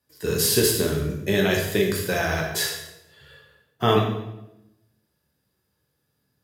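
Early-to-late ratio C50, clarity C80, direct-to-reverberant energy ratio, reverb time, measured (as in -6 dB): 4.5 dB, 7.0 dB, -1.0 dB, 0.95 s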